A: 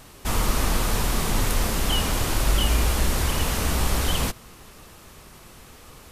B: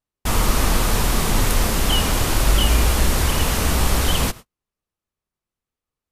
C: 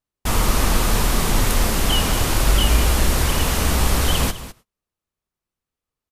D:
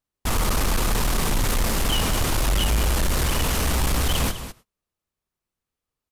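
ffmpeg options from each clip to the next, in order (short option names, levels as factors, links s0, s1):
-af "agate=range=0.00447:threshold=0.0158:ratio=16:detection=peak,volume=1.68"
-af "aecho=1:1:205:0.188"
-af "asoftclip=type=tanh:threshold=0.15"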